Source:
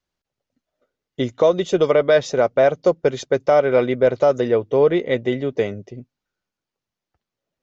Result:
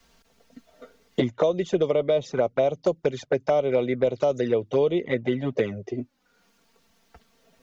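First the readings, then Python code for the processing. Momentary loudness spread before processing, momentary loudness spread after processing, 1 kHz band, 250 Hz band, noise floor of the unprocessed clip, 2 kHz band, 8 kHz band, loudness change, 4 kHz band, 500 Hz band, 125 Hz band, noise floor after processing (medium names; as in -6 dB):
8 LU, 6 LU, -8.0 dB, -3.5 dB, under -85 dBFS, -8.5 dB, no reading, -6.5 dB, -6.0 dB, -6.5 dB, -3.0 dB, -65 dBFS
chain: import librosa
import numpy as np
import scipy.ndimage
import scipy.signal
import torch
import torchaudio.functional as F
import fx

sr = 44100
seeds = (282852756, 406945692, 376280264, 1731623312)

y = fx.env_flanger(x, sr, rest_ms=4.4, full_db=-12.5)
y = fx.band_squash(y, sr, depth_pct=100)
y = F.gain(torch.from_numpy(y), -5.0).numpy()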